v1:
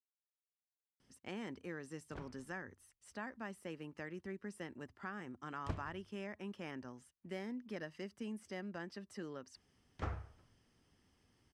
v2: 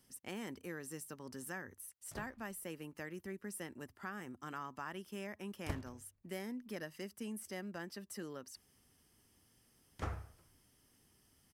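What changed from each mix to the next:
speech: entry −1.00 s
master: remove high-frequency loss of the air 100 metres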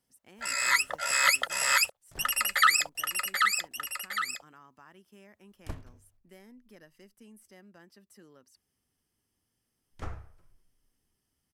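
speech −10.0 dB
first sound: unmuted
second sound: remove high-pass filter 54 Hz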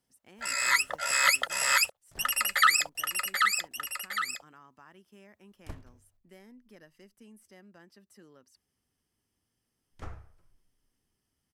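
speech: add high-shelf EQ 11,000 Hz −6 dB
second sound −3.5 dB

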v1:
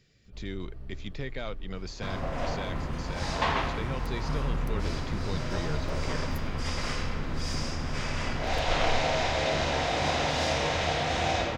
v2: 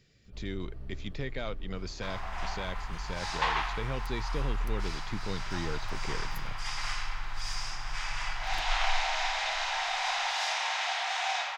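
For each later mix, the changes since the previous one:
second sound: add elliptic high-pass filter 790 Hz, stop band 70 dB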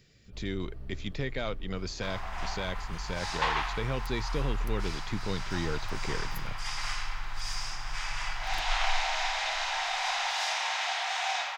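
speech +3.0 dB
master: add high-shelf EQ 9,800 Hz +5.5 dB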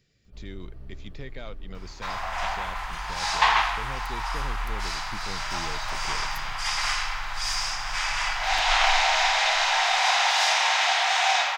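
speech −7.0 dB
second sound +9.0 dB

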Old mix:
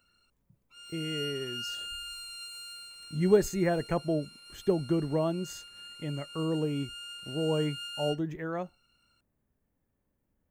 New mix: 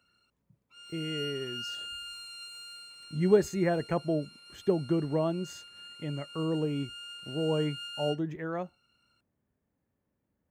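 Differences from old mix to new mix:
speech: add high-pass filter 76 Hz
master: add high-shelf EQ 7,900 Hz −9 dB

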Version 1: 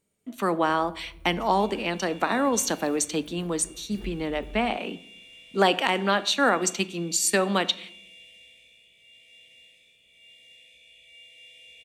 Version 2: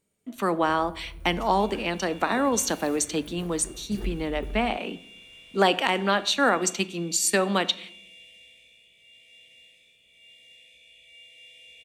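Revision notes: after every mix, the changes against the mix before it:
first sound +6.5 dB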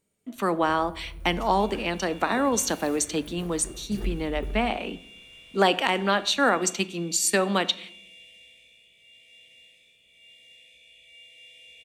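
first sound: send on

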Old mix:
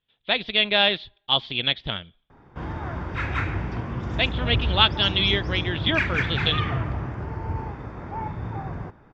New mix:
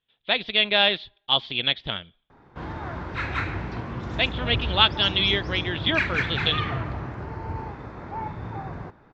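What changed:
background: remove notch filter 4,100 Hz, Q 6.3
master: add low-shelf EQ 180 Hz −5 dB

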